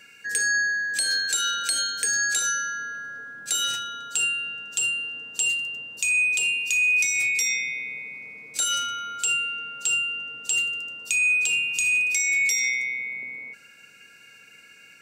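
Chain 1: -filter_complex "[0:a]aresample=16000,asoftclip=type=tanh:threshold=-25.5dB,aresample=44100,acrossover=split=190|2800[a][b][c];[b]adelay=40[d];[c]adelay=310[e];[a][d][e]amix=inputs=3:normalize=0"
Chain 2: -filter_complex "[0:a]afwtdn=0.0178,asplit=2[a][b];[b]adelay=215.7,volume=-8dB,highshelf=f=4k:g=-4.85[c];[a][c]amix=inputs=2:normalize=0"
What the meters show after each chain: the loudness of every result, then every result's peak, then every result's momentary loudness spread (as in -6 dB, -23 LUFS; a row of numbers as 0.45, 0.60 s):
-29.5, -22.5 LUFS; -19.5, -8.5 dBFS; 9, 12 LU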